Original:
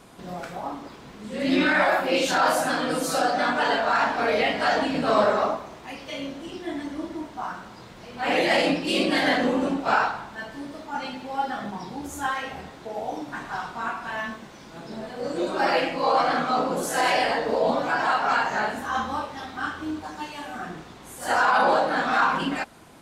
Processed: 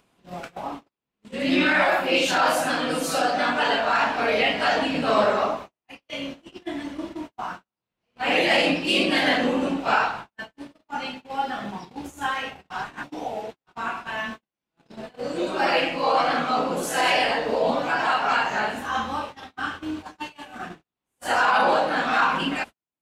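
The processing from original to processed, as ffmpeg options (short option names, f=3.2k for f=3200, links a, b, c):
-filter_complex "[0:a]asplit=3[a][b][c];[a]atrim=end=12.702[d];[b]atrim=start=12.698:end=13.662,asetpts=PTS-STARTPTS,areverse[e];[c]atrim=start=13.658[f];[d][e]acrossfade=d=0.004:c1=hsin:c2=hsin[g];[g][f]acrossfade=d=0.004:c1=hsin:c2=hsin,agate=range=-50dB:threshold=-34dB:ratio=16:detection=peak,acompressor=mode=upward:threshold=-41dB:ratio=2.5,equalizer=f=2.7k:w=2.6:g=6.5"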